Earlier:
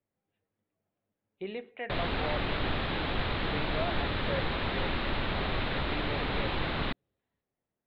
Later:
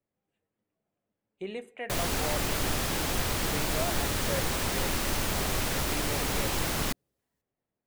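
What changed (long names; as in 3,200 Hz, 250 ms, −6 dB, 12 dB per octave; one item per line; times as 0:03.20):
speech: add mains-hum notches 50/100 Hz
master: remove elliptic low-pass filter 3,900 Hz, stop band 40 dB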